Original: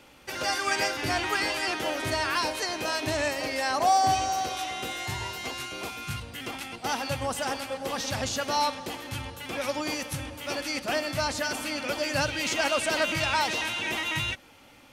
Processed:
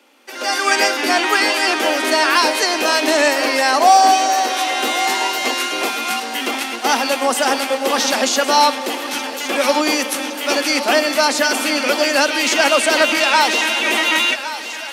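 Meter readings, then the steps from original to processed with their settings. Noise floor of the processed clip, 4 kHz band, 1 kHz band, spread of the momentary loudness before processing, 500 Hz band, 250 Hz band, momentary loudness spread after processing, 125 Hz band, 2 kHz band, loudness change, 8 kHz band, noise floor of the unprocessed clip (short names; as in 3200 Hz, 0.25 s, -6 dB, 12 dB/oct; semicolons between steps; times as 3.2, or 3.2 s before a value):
-28 dBFS, +13.0 dB, +12.5 dB, 10 LU, +13.0 dB, +12.5 dB, 8 LU, under -10 dB, +13.0 dB, +12.5 dB, +13.0 dB, -54 dBFS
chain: steep high-pass 220 Hz 72 dB/oct; AGC gain up to 15 dB; thinning echo 1.115 s, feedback 63%, high-pass 520 Hz, level -12 dB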